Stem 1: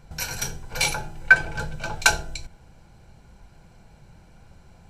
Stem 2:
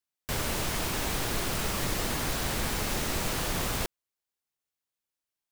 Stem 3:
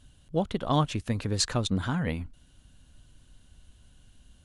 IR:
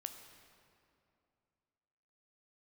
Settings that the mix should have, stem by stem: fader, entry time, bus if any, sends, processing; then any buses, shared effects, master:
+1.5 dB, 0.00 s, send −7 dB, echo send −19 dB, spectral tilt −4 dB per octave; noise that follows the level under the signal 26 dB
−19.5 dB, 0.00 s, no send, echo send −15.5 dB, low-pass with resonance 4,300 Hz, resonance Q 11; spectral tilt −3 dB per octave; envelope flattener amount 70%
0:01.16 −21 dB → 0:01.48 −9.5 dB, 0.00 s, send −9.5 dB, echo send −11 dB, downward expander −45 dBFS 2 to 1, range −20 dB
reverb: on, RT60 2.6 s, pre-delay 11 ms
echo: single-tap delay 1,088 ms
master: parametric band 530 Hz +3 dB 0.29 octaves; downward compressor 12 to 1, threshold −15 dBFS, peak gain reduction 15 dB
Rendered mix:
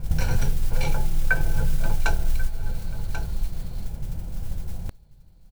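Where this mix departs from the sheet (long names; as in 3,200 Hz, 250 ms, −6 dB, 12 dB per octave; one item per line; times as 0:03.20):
stem 2 −19.5 dB → −31.0 dB
stem 3: muted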